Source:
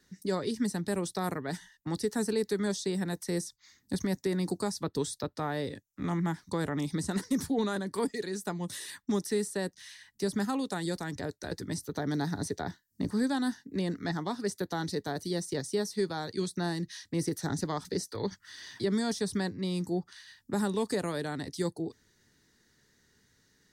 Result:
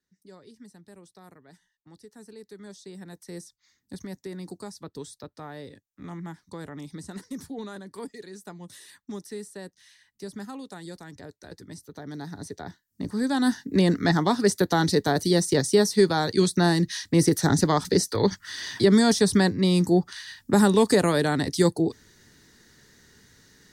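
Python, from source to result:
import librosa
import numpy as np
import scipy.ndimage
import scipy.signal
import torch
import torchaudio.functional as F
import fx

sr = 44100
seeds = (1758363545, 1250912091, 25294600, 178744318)

y = fx.gain(x, sr, db=fx.line((2.1, -18.0), (3.39, -7.0), (12.01, -7.0), (13.16, 1.0), (13.59, 11.5)))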